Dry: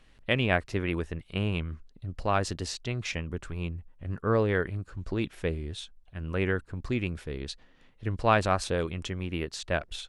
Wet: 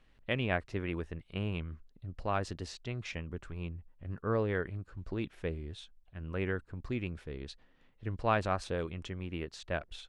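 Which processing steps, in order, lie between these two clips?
high shelf 5700 Hz -10 dB; gain -6 dB

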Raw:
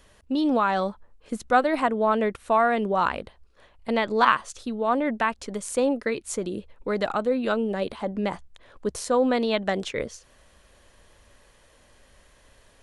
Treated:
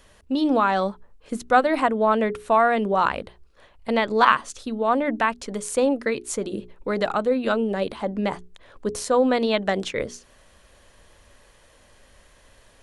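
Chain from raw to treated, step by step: notches 60/120/180/240/300/360/420 Hz; gain +2.5 dB

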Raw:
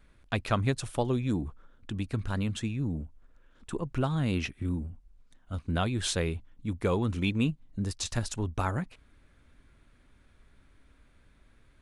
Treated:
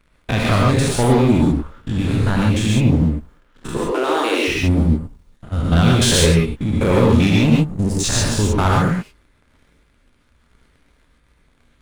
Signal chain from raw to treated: stepped spectrum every 0.1 s; 3.77–4.48 steep high-pass 320 Hz 48 dB/oct; 7.47–8.04 band shelf 2000 Hz -10.5 dB 2.8 oct; sample leveller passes 3; non-linear reverb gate 0.16 s rising, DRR -2 dB; gain +5.5 dB

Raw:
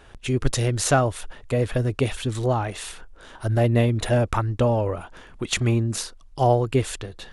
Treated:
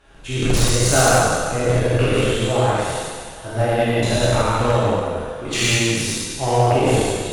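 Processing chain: spectral trails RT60 2.18 s; non-linear reverb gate 0.21 s flat, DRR -6.5 dB; added harmonics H 5 -7 dB, 7 -11 dB, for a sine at 4 dBFS; gain -10 dB

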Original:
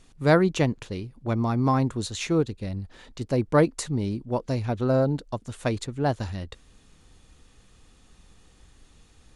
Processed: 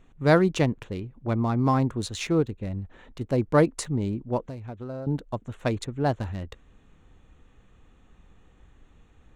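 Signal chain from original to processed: Wiener smoothing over 9 samples; 4.43–5.07 compressor 2.5:1, threshold -40 dBFS, peak gain reduction 14.5 dB

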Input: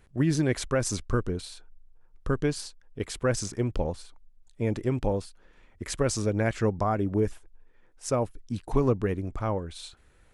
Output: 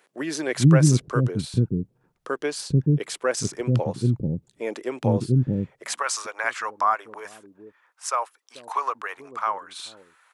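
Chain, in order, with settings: high-pass sweep 140 Hz -> 1100 Hz, 5.36–6.04; bands offset in time highs, lows 0.44 s, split 370 Hz; gain +4.5 dB

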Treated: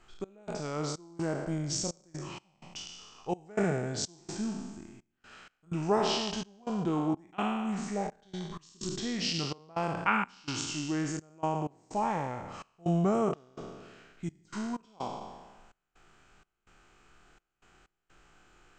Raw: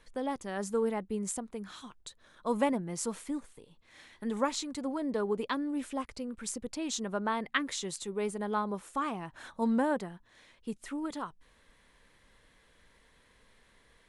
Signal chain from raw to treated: spectral trails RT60 1.00 s; step gate "x.xx.xxx.x.xx" 84 bpm -24 dB; varispeed -25%

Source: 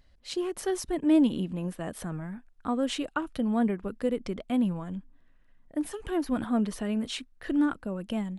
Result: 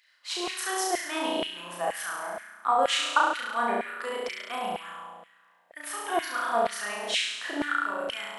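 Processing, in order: flutter echo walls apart 5.9 m, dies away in 1.2 s; LFO high-pass saw down 2.1 Hz 650–2200 Hz; gain +3 dB

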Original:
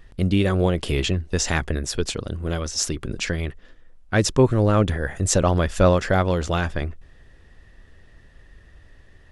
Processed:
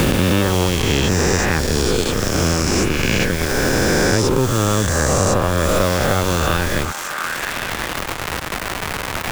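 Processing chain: spectral swells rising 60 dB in 2.89 s; notch 680 Hz, Q 12; in parallel at -4 dB: Schmitt trigger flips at -16 dBFS; on the sum: bit-crush 5-bit; crackle 350/s -23 dBFS; on a send: delay with a stepping band-pass 0.352 s, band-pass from 1000 Hz, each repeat 0.7 oct, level -12 dB; on the sum: three-band squash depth 100%; gain -3 dB

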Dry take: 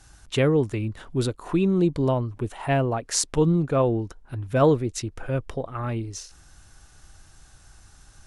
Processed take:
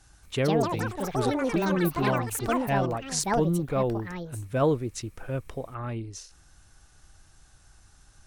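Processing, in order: echoes that change speed 0.231 s, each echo +7 st, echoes 3; gain -5 dB

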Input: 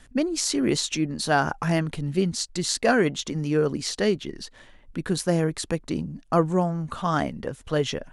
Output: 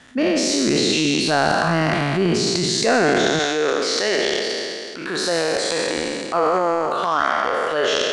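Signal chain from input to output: spectral trails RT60 2.24 s; HPF 140 Hz 12 dB/oct, from 3.39 s 480 Hz; transient shaper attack -6 dB, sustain +10 dB; compressor 2.5:1, threshold -22 dBFS, peak gain reduction 7.5 dB; LPF 5800 Hz 12 dB/oct; gain +6 dB

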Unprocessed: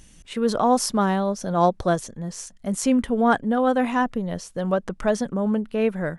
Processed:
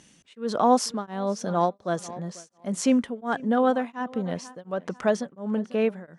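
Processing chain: BPF 160–7700 Hz; on a send: tape echo 0.495 s, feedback 28%, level -19.5 dB, low-pass 5500 Hz; on the sum: beating tremolo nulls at 1.4 Hz

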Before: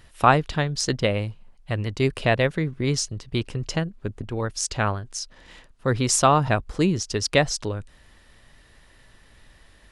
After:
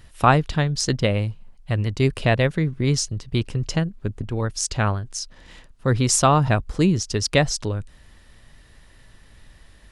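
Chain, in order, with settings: tone controls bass +5 dB, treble +2 dB

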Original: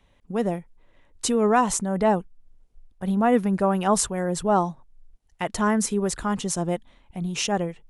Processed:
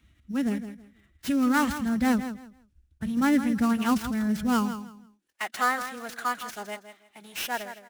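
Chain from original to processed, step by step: switching dead time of 0.074 ms; band shelf 600 Hz -14.5 dB; formant-preserving pitch shift +3 st; on a send: feedback echo 0.163 s, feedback 22%, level -11 dB; on the sum: high-pass sweep 72 Hz -> 680 Hz, 4.8–5.4; in parallel at -12 dB: sample-rate reducer 5700 Hz, jitter 0%

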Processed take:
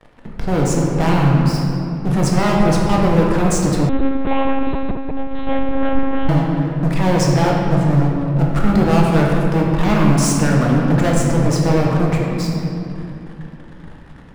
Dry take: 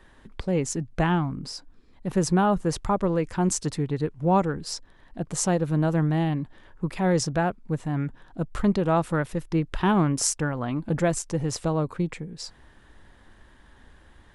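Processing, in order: high shelf 2300 Hz -9.5 dB; de-hum 393.3 Hz, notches 2; sample leveller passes 5; shoebox room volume 120 m³, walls hard, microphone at 0.56 m; 3.89–6.29 monotone LPC vocoder at 8 kHz 270 Hz; gain -5.5 dB

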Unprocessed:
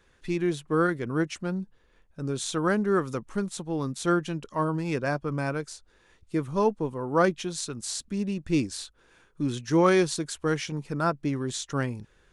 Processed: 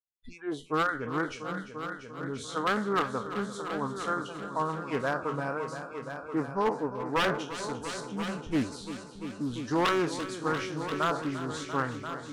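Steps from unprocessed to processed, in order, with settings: spectral trails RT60 0.39 s; gate with hold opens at -48 dBFS; spectral noise reduction 26 dB; dynamic EQ 1200 Hz, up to +5 dB, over -40 dBFS, Q 1.3; harmonic-percussive split harmonic -6 dB; high shelf 3300 Hz -12 dB; wavefolder -19.5 dBFS; multi-head echo 0.344 s, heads all three, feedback 44%, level -13 dB; Doppler distortion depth 0.27 ms

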